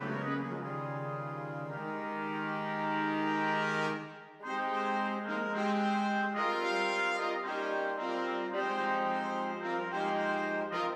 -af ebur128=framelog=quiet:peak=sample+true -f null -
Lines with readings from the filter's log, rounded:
Integrated loudness:
  I:         -33.5 LUFS
  Threshold: -43.6 LUFS
Loudness range:
  LRA:         2.5 LU
  Threshold: -53.2 LUFS
  LRA low:   -34.6 LUFS
  LRA high:  -32.1 LUFS
Sample peak:
  Peak:      -19.3 dBFS
True peak:
  Peak:      -19.3 dBFS